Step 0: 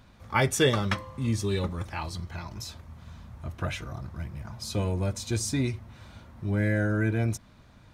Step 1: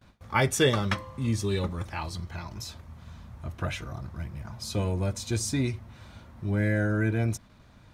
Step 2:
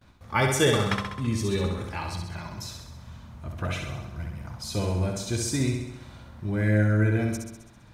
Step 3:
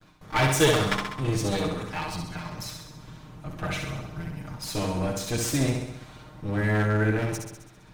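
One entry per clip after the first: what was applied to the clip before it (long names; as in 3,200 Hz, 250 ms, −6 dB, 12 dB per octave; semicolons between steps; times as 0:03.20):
noise gate with hold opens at −45 dBFS
flutter between parallel walls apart 11.3 metres, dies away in 0.87 s
lower of the sound and its delayed copy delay 6.5 ms; level +2.5 dB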